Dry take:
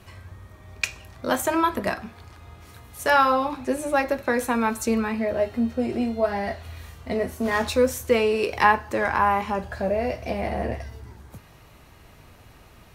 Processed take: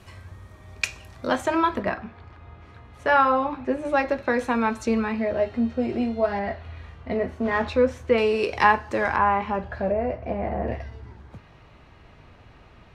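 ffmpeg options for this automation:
ffmpeg -i in.wav -af "asetnsamples=nb_out_samples=441:pad=0,asendcmd='1.27 lowpass f 4700;1.83 lowpass f 2500;3.85 lowpass f 4500;6.39 lowpass f 2700;8.18 lowpass f 6700;9.16 lowpass f 2900;9.92 lowpass f 1500;10.68 lowpass f 3500',lowpass=11000" out.wav

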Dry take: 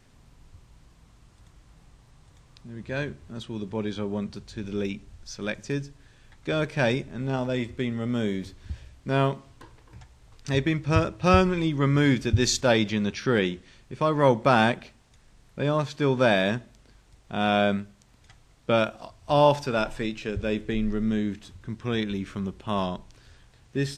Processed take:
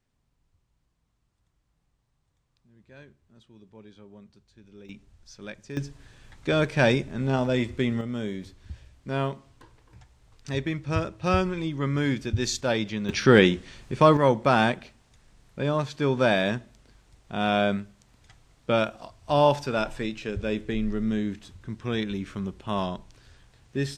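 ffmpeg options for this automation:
ffmpeg -i in.wav -af "asetnsamples=nb_out_samples=441:pad=0,asendcmd='4.89 volume volume -9dB;5.77 volume volume 3dB;8.01 volume volume -4.5dB;13.09 volume volume 7dB;14.17 volume volume -1dB',volume=-19dB" out.wav

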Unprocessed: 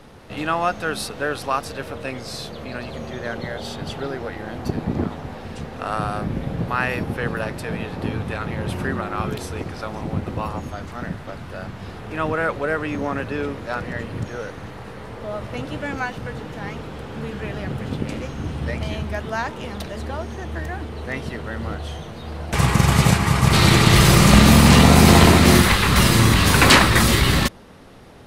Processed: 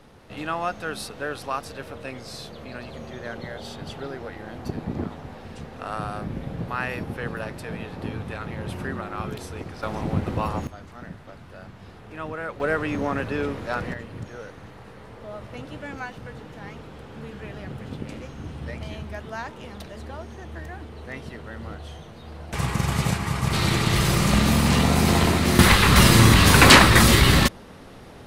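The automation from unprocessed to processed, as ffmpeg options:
ffmpeg -i in.wav -af "asetnsamples=nb_out_samples=441:pad=0,asendcmd='9.83 volume volume 0.5dB;10.67 volume volume -10dB;12.6 volume volume -1dB;13.94 volume volume -8dB;25.59 volume volume 1dB',volume=-6dB" out.wav

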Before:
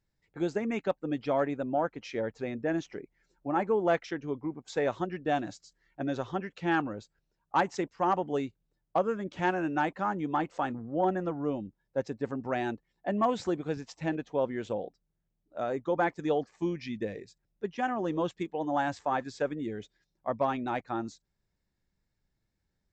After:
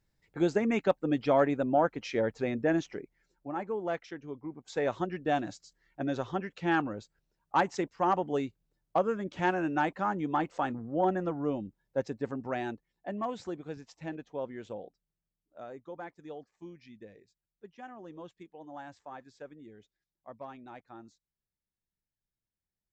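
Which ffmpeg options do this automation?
ffmpeg -i in.wav -af "volume=10.5dB,afade=type=out:start_time=2.62:duration=0.93:silence=0.298538,afade=type=in:start_time=4.39:duration=0.59:silence=0.446684,afade=type=out:start_time=11.99:duration=1.24:silence=0.421697,afade=type=out:start_time=14.86:duration=1.17:silence=0.398107" out.wav

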